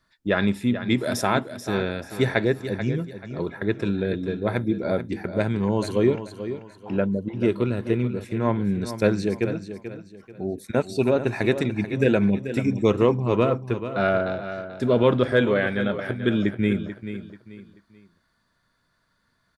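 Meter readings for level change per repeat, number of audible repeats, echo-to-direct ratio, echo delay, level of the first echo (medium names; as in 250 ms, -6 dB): -10.0 dB, 3, -10.5 dB, 436 ms, -11.0 dB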